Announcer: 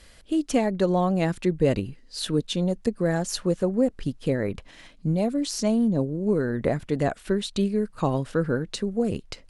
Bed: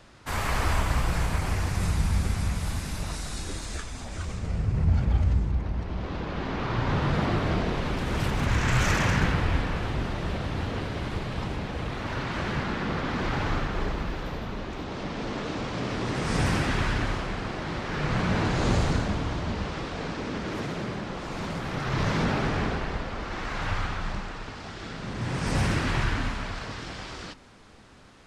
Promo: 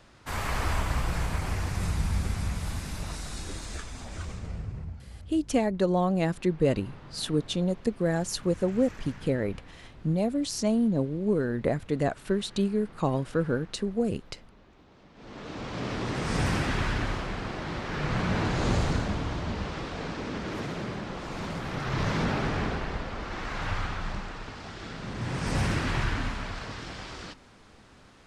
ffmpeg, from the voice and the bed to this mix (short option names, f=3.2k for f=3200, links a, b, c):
-filter_complex "[0:a]adelay=5000,volume=-2.5dB[a];[1:a]volume=17dB,afade=t=out:st=4.21:d=0.77:silence=0.112202,afade=t=in:st=15.14:d=0.73:silence=0.1[b];[a][b]amix=inputs=2:normalize=0"